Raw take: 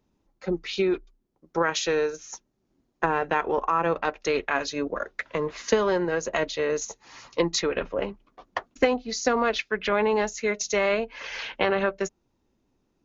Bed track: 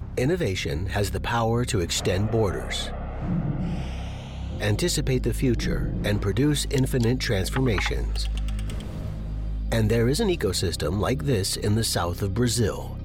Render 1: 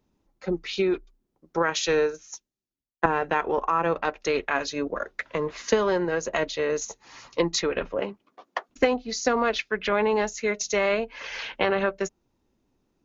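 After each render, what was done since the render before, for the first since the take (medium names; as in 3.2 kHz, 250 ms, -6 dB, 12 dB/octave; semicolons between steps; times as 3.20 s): 1.83–3.06 s: three bands expanded up and down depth 100%; 7.97–8.68 s: high-pass 110 Hz -> 420 Hz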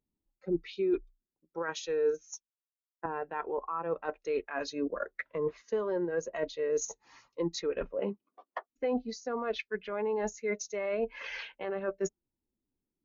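reverse; compression 16:1, threshold -31 dBFS, peak gain reduction 17.5 dB; reverse; spectral contrast expander 1.5:1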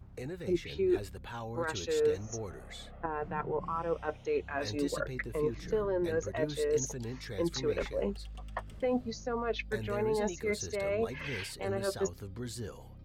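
add bed track -17.5 dB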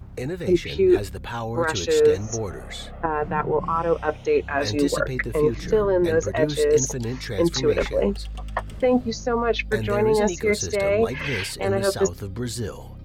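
trim +11.5 dB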